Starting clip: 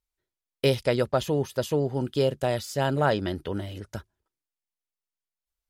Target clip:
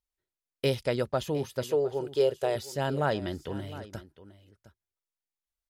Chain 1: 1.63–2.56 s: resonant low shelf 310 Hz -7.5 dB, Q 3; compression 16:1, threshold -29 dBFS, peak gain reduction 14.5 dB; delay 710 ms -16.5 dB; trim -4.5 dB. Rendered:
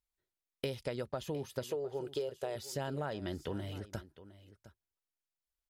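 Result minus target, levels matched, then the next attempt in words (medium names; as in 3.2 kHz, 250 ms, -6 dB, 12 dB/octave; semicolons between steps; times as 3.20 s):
compression: peak gain reduction +14.5 dB
1.63–2.56 s: resonant low shelf 310 Hz -7.5 dB, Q 3; delay 710 ms -16.5 dB; trim -4.5 dB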